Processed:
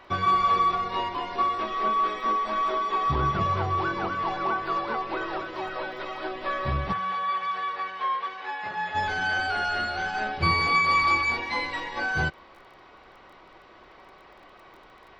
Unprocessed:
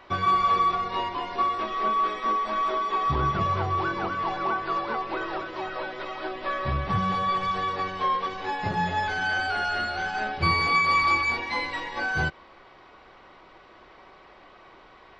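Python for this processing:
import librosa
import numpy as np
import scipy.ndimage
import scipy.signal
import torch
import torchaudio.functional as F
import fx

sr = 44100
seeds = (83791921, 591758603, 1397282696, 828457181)

y = fx.dmg_crackle(x, sr, seeds[0], per_s=18.0, level_db=-47.0)
y = fx.bandpass_q(y, sr, hz=1700.0, q=0.82, at=(6.92, 8.94), fade=0.02)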